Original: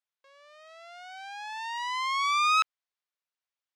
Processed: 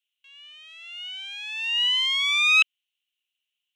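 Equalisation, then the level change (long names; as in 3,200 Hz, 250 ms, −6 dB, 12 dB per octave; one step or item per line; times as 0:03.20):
high-pass with resonance 2,900 Hz, resonance Q 9.5
parametric band 4,800 Hz −14 dB 0.31 octaves
+3.5 dB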